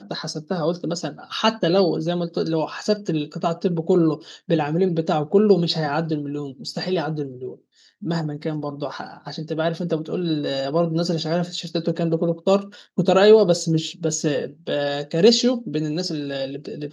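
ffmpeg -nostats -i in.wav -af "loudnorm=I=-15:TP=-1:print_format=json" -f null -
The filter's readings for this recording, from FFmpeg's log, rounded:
"input_i" : "-22.1",
"input_tp" : "-1.8",
"input_lra" : "5.4",
"input_thresh" : "-32.3",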